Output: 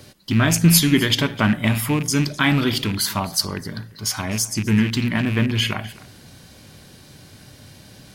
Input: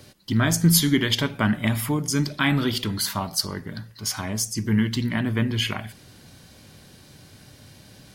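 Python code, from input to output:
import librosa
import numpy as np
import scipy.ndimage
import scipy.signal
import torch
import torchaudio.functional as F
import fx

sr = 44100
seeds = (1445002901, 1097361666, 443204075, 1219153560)

p1 = fx.rattle_buzz(x, sr, strikes_db=-25.0, level_db=-23.0)
p2 = p1 + fx.echo_single(p1, sr, ms=256, db=-20.0, dry=0)
y = p2 * librosa.db_to_amplitude(3.5)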